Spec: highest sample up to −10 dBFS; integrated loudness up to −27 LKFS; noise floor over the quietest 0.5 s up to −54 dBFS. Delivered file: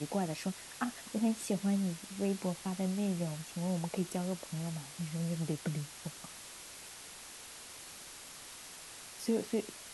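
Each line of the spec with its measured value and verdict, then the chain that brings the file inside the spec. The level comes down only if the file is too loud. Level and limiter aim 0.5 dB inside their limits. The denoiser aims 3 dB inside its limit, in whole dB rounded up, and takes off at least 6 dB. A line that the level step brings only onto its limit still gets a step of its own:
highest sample −20.5 dBFS: in spec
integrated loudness −37.5 LKFS: in spec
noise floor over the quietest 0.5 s −50 dBFS: out of spec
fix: broadband denoise 7 dB, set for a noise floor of −50 dBFS

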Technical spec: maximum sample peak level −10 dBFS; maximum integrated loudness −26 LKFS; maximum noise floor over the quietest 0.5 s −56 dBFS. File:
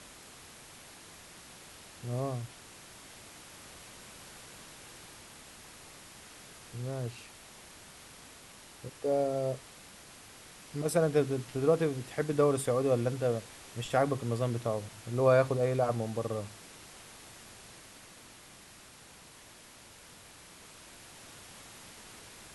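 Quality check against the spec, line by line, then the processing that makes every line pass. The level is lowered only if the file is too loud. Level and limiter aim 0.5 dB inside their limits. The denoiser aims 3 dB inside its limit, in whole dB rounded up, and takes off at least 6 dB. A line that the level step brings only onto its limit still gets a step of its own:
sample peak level −12.5 dBFS: in spec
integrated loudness −31.0 LKFS: in spec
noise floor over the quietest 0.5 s −54 dBFS: out of spec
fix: broadband denoise 6 dB, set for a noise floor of −54 dBFS

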